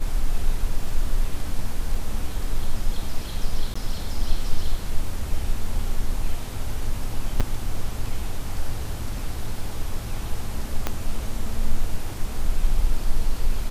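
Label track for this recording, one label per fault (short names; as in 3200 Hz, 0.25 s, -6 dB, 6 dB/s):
1.950000	1.950000	gap 3.1 ms
3.740000	3.750000	gap 15 ms
7.400000	7.410000	gap 6.2 ms
10.870000	10.870000	pop -9 dBFS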